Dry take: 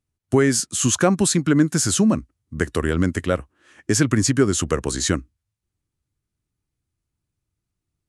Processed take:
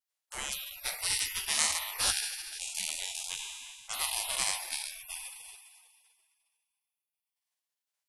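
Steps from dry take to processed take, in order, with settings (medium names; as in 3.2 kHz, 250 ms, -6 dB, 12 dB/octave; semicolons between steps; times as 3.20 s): spectral sustain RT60 2.06 s; 0.85–1.35 s: transient shaper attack -2 dB, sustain +11 dB; 2.55–3.27 s: peaking EQ 1.1 kHz +14 dB 0.74 oct; spectral gate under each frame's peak -30 dB weak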